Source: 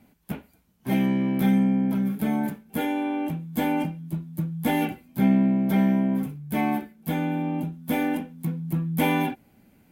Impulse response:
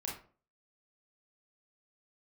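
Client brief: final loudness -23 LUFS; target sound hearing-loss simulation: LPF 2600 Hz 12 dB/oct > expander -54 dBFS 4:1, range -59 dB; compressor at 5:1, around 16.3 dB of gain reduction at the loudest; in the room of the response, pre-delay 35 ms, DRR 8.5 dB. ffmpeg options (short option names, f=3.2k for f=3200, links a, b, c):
-filter_complex "[0:a]acompressor=threshold=-36dB:ratio=5,asplit=2[a][b];[1:a]atrim=start_sample=2205,adelay=35[c];[b][c]afir=irnorm=-1:irlink=0,volume=-9.5dB[d];[a][d]amix=inputs=2:normalize=0,lowpass=2.6k,agate=range=-59dB:threshold=-54dB:ratio=4,volume=15dB"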